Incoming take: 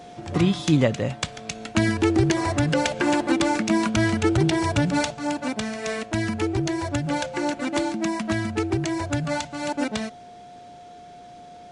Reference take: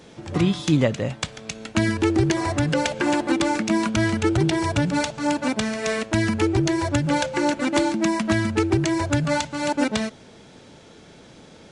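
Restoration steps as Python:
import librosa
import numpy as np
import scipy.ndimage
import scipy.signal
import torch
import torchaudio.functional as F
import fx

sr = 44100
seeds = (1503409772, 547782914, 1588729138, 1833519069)

y = fx.notch(x, sr, hz=710.0, q=30.0)
y = fx.fix_level(y, sr, at_s=5.14, step_db=4.0)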